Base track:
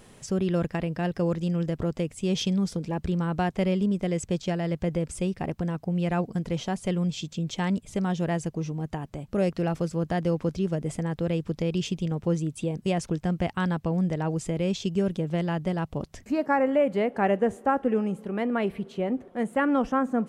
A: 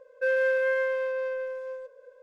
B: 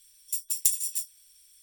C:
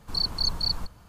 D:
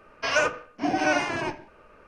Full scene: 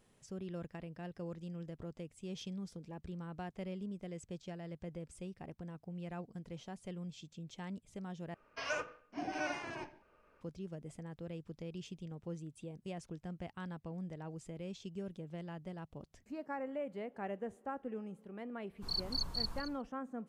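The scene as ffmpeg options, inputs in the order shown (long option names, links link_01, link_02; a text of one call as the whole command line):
ffmpeg -i bed.wav -i cue0.wav -i cue1.wav -i cue2.wav -i cue3.wav -filter_complex "[0:a]volume=-18dB[link_01];[3:a]aecho=1:1:454:0.224[link_02];[link_01]asplit=2[link_03][link_04];[link_03]atrim=end=8.344[link_05];[4:a]atrim=end=2.07,asetpts=PTS-STARTPTS,volume=-15dB[link_06];[link_04]atrim=start=10.406[link_07];[link_02]atrim=end=1.08,asetpts=PTS-STARTPTS,volume=-11dB,afade=type=in:duration=0.1,afade=type=out:start_time=0.98:duration=0.1,adelay=18740[link_08];[link_05][link_06]acrossfade=duration=0.004:curve1=hsin:curve2=hsin[link_09];[link_09][link_07]acrossfade=duration=0.004:curve1=hsin:curve2=hsin[link_10];[link_10][link_08]amix=inputs=2:normalize=0" out.wav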